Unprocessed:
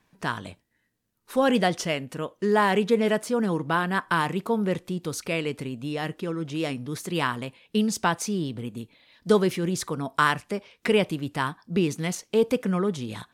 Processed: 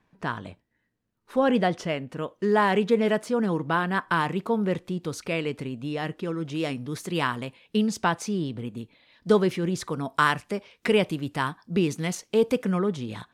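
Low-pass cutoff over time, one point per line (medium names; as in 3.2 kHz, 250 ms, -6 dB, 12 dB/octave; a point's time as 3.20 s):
low-pass 6 dB/octave
2 kHz
from 2.18 s 4.4 kHz
from 6.25 s 8.1 kHz
from 7.77 s 4.2 kHz
from 9.90 s 11 kHz
from 12.79 s 3.9 kHz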